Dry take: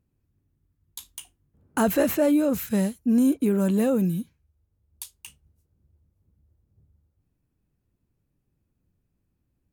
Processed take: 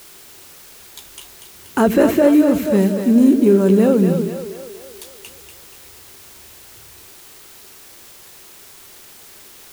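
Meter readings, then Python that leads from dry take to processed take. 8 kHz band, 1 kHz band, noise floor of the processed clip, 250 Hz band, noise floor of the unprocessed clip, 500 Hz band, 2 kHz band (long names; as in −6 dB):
+4.0 dB, +7.5 dB, −43 dBFS, +8.5 dB, −76 dBFS, +10.5 dB, +7.0 dB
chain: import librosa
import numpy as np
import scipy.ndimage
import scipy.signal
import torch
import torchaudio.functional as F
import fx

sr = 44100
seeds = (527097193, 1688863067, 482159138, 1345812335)

p1 = fx.high_shelf(x, sr, hz=7100.0, db=-11.5)
p2 = fx.echo_split(p1, sr, split_hz=370.0, low_ms=83, high_ms=240, feedback_pct=52, wet_db=-7)
p3 = fx.quant_dither(p2, sr, seeds[0], bits=6, dither='triangular')
p4 = p2 + F.gain(torch.from_numpy(p3), -10.5).numpy()
p5 = fx.peak_eq(p4, sr, hz=380.0, db=9.0, octaves=0.39)
y = F.gain(torch.from_numpy(p5), 4.0).numpy()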